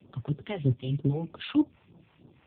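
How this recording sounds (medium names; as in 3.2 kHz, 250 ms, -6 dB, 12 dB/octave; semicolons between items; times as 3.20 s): a quantiser's noise floor 12-bit, dither none; phasing stages 2, 3.2 Hz, lowest notch 220–2200 Hz; AMR-NB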